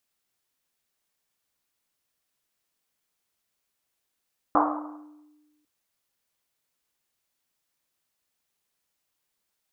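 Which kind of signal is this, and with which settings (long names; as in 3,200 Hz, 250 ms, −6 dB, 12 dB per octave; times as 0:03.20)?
drum after Risset, pitch 300 Hz, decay 1.43 s, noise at 930 Hz, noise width 670 Hz, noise 60%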